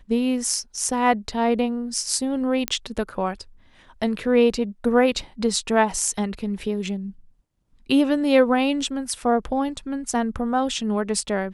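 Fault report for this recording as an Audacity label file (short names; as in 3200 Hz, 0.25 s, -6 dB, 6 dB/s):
2.680000	2.680000	pop -6 dBFS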